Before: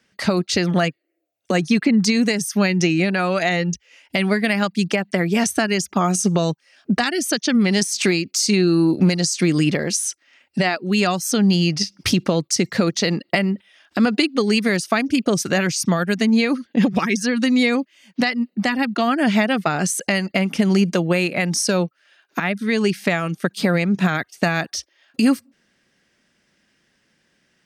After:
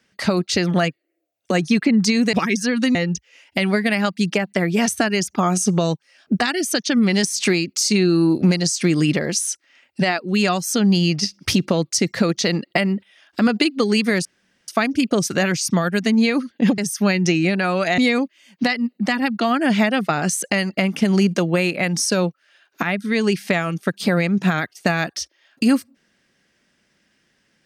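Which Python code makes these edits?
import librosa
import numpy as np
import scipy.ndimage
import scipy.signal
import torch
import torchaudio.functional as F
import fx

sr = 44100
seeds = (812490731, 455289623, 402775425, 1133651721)

y = fx.edit(x, sr, fx.swap(start_s=2.33, length_s=1.2, other_s=16.93, other_length_s=0.62),
    fx.insert_room_tone(at_s=14.83, length_s=0.43), tone=tone)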